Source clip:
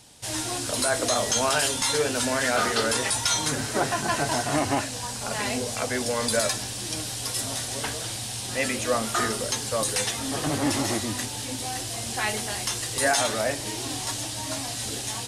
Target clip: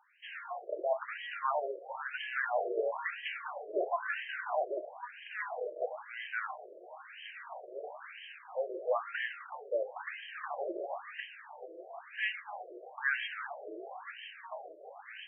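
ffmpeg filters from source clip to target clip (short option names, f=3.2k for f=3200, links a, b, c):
-af "acrusher=bits=3:mode=log:mix=0:aa=0.000001,afftfilt=real='re*between(b*sr/1024,460*pow(2300/460,0.5+0.5*sin(2*PI*1*pts/sr))/1.41,460*pow(2300/460,0.5+0.5*sin(2*PI*1*pts/sr))*1.41)':imag='im*between(b*sr/1024,460*pow(2300/460,0.5+0.5*sin(2*PI*1*pts/sr))/1.41,460*pow(2300/460,0.5+0.5*sin(2*PI*1*pts/sr))*1.41)':win_size=1024:overlap=0.75,volume=-3.5dB"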